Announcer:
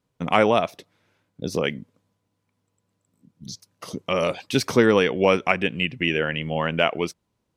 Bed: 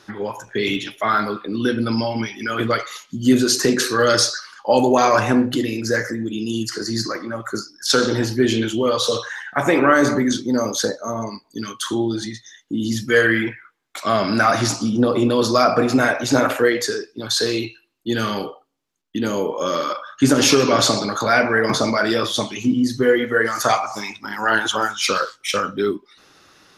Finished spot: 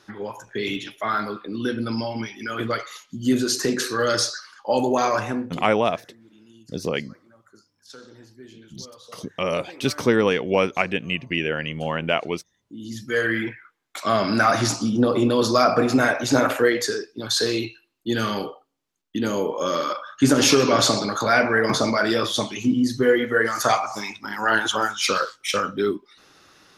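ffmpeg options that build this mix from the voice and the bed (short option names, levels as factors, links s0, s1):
-filter_complex "[0:a]adelay=5300,volume=0.841[s0];[1:a]volume=10,afade=t=out:st=5.05:d=0.67:silence=0.0794328,afade=t=in:st=12.54:d=1.25:silence=0.0530884[s1];[s0][s1]amix=inputs=2:normalize=0"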